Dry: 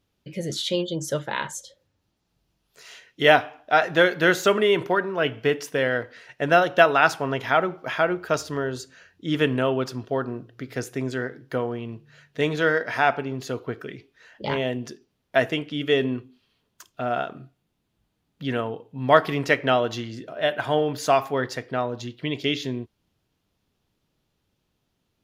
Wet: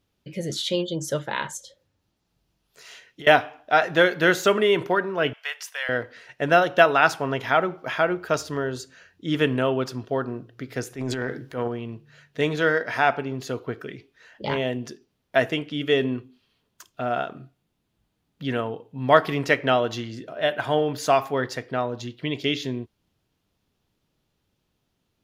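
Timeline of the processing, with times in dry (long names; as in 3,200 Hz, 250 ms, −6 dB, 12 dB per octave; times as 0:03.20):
0:01.57–0:03.27: downward compressor, threshold −37 dBFS
0:05.33–0:05.89: Bessel high-pass filter 1,200 Hz, order 8
0:10.90–0:11.68: transient designer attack −9 dB, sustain +9 dB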